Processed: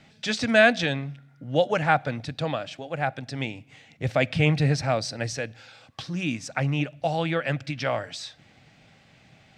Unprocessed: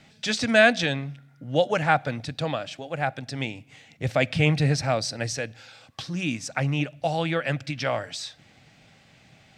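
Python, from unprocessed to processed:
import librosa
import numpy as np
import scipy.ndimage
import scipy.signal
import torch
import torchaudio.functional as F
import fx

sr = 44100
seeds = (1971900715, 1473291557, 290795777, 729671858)

y = fx.high_shelf(x, sr, hz=6100.0, db=-6.5)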